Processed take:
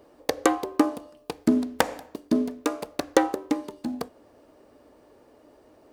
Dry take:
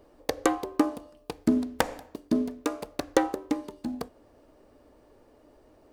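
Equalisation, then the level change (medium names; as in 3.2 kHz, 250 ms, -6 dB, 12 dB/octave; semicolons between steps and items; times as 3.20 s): high-pass 140 Hz 6 dB/octave; +3.5 dB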